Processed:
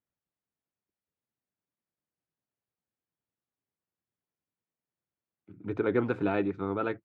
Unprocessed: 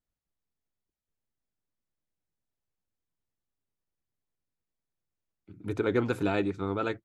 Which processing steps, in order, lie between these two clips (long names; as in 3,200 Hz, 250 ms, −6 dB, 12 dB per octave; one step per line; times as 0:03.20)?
band-pass filter 110–2,300 Hz